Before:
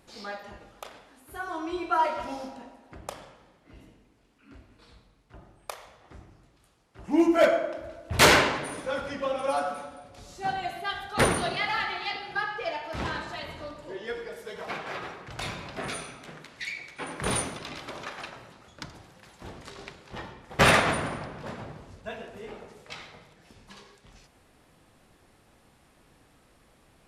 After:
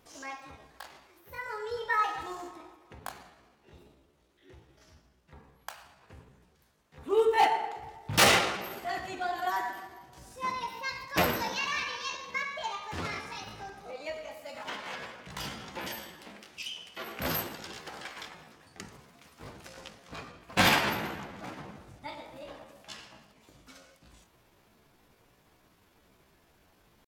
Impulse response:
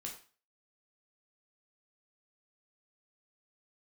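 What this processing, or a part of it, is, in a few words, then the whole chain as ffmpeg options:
chipmunk voice: -af "asetrate=58866,aresample=44100,atempo=0.749154,volume=-3.5dB"

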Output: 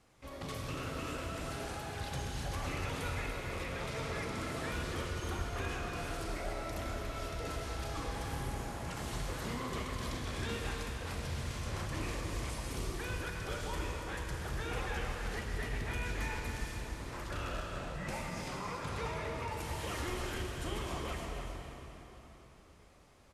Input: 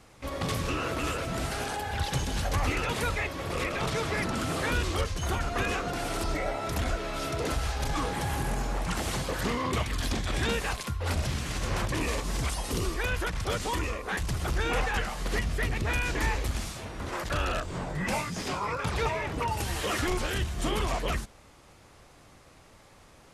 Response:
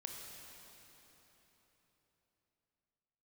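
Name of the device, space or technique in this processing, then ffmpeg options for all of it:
cave: -filter_complex "[0:a]aecho=1:1:287:0.376[a];[1:a]atrim=start_sample=2205[b];[a][b]afir=irnorm=-1:irlink=0,volume=-7dB"

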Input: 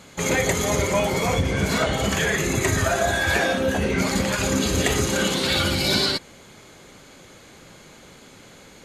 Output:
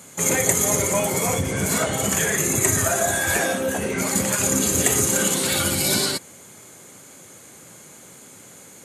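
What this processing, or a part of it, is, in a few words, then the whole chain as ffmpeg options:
budget condenser microphone: -filter_complex "[0:a]asettb=1/sr,asplit=3[a][b][c];[a]atrim=end=3.574[d];[b]atrim=start=3.57:end=4.15,asetpts=PTS-STARTPTS,afade=t=in:d=0.004:c=qsin,afade=t=out:st=0.576:d=0.004:c=qsin,bass=f=250:g=-4,treble=f=4k:g=-2[e];[c]atrim=start=4.146[f];[d][e]acrossfade=d=0.004:c1=hsin:c2=qsin[g];[g][f]acrossfade=d=0.004:c1=qsin:c2=hsin,highpass=f=87:w=0.5412,highpass=f=87:w=1.3066,highshelf=f=6.1k:t=q:w=1.5:g=11.5,volume=-1dB"

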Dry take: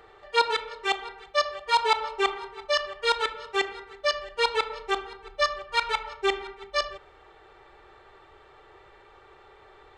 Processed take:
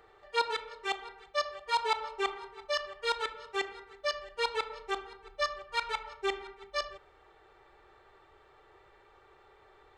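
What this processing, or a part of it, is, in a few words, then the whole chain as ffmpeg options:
exciter from parts: -filter_complex "[0:a]asplit=2[a][b];[b]highpass=f=2.8k:w=0.5412,highpass=f=2.8k:w=1.3066,asoftclip=type=tanh:threshold=-25dB,volume=-14dB[c];[a][c]amix=inputs=2:normalize=0,volume=-7dB"

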